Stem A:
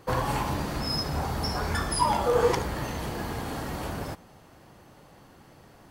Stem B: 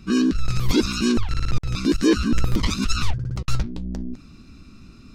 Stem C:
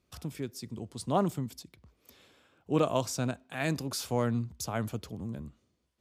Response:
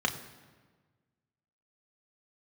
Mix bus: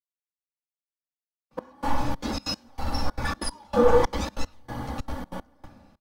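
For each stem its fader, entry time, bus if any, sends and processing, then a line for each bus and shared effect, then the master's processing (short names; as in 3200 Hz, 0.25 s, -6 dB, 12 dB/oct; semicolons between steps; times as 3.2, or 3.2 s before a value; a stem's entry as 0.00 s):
-5.5 dB, 1.50 s, send -8 dB, comb 3.5 ms, depth 64%
-4.0 dB, 1.50 s, no send, limiter -15.5 dBFS, peak gain reduction 8 dB; ensemble effect
off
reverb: on, RT60 1.4 s, pre-delay 3 ms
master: step gate "xxx.xx.x...x" 189 bpm -24 dB; bell 350 Hz -6.5 dB 0.22 oct; three-band expander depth 40%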